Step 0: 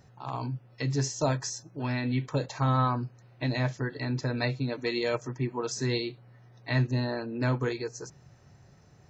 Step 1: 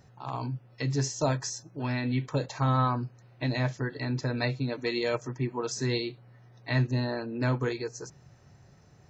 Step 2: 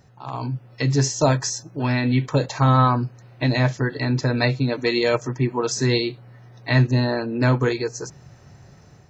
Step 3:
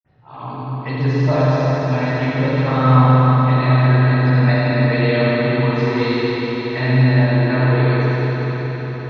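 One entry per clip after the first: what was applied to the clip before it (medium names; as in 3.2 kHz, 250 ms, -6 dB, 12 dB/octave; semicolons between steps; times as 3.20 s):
no audible change
level rider gain up to 6 dB; trim +3 dB
reverberation RT60 5.7 s, pre-delay 47 ms; trim -5.5 dB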